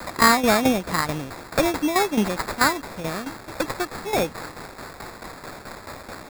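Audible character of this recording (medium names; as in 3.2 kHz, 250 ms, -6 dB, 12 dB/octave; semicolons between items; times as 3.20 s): a quantiser's noise floor 6-bit, dither triangular; tremolo saw down 4.6 Hz, depth 70%; aliases and images of a low sample rate 3 kHz, jitter 0%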